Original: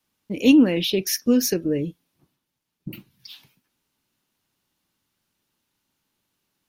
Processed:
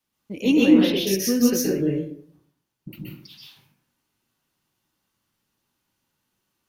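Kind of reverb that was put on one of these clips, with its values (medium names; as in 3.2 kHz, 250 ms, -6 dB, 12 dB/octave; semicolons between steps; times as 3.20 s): plate-style reverb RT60 0.61 s, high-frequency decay 0.55×, pre-delay 115 ms, DRR -4.5 dB; trim -5 dB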